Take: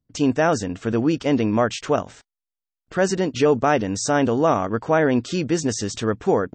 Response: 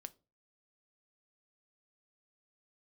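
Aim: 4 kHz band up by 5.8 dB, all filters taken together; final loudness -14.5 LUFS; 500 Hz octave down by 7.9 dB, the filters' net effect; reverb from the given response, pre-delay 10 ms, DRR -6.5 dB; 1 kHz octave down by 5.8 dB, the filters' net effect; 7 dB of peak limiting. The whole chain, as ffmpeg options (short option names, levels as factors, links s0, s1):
-filter_complex "[0:a]equalizer=f=500:t=o:g=-9,equalizer=f=1000:t=o:g=-5,equalizer=f=4000:t=o:g=8.5,alimiter=limit=0.133:level=0:latency=1,asplit=2[s0][s1];[1:a]atrim=start_sample=2205,adelay=10[s2];[s1][s2]afir=irnorm=-1:irlink=0,volume=3.98[s3];[s0][s3]amix=inputs=2:normalize=0,volume=2"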